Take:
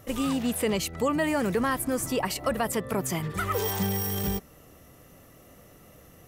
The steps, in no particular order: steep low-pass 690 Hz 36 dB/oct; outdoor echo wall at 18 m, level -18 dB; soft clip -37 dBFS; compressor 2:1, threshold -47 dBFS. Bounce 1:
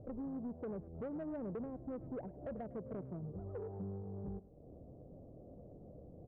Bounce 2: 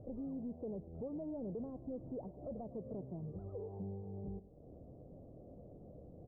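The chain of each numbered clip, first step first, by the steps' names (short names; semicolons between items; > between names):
compressor > steep low-pass > soft clip > outdoor echo; compressor > outdoor echo > soft clip > steep low-pass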